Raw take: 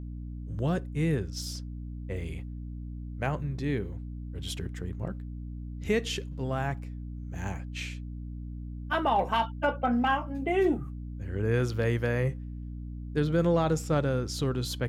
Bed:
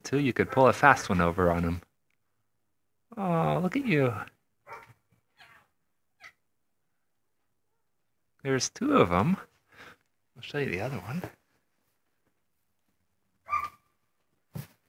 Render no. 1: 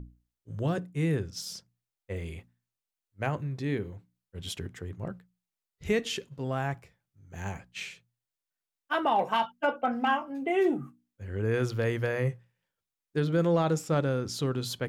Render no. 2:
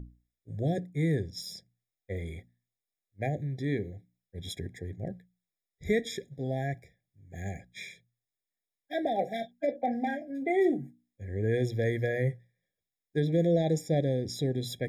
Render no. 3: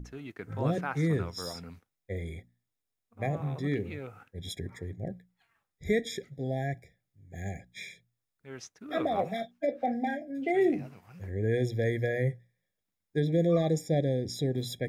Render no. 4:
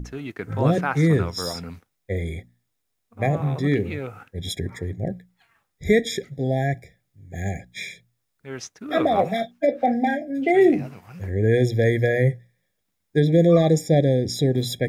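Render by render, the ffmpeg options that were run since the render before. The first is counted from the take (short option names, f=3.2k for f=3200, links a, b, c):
-af "bandreject=f=60:t=h:w=6,bandreject=f=120:t=h:w=6,bandreject=f=180:t=h:w=6,bandreject=f=240:t=h:w=6,bandreject=f=300:t=h:w=6"
-af "afftfilt=real='re*eq(mod(floor(b*sr/1024/810),2),0)':imag='im*eq(mod(floor(b*sr/1024/810),2),0)':win_size=1024:overlap=0.75"
-filter_complex "[1:a]volume=-16.5dB[a];[0:a][a]amix=inputs=2:normalize=0"
-af "volume=9.5dB"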